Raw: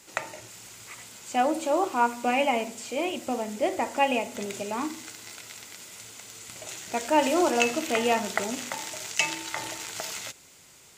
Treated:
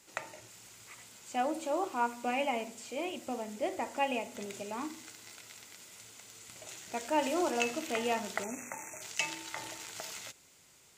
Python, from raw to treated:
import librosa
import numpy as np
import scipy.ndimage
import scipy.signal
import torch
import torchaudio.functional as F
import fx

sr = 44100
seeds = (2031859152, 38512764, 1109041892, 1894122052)

y = fx.spec_erase(x, sr, start_s=8.43, length_s=0.59, low_hz=2700.0, high_hz=5700.0)
y = y * librosa.db_to_amplitude(-8.0)